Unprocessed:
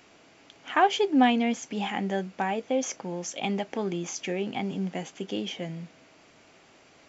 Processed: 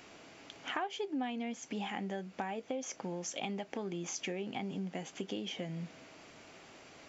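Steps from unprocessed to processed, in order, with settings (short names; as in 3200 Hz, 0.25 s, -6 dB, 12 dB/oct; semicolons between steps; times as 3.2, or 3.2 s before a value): compressor 5:1, threshold -38 dBFS, peak gain reduction 19.5 dB; gain +1.5 dB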